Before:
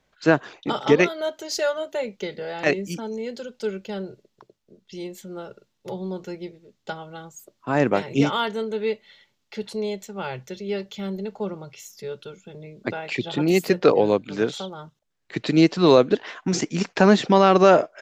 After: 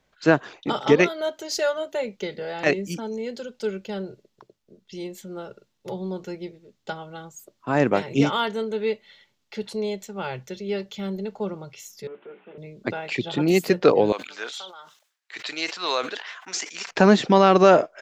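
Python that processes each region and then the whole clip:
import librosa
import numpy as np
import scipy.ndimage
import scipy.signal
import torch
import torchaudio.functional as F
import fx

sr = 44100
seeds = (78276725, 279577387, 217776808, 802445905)

y = fx.chain(x, sr, fx.delta_mod(bps=16000, step_db=-52.0),
    fx.highpass(hz=250.0, slope=24),
    fx.hum_notches(base_hz=60, count=9), at=(12.07, 12.58))
y = fx.chain(y, sr, fx.highpass(hz=1100.0, slope=12),
    fx.sustainer(db_per_s=110.0), at=(14.12, 16.91))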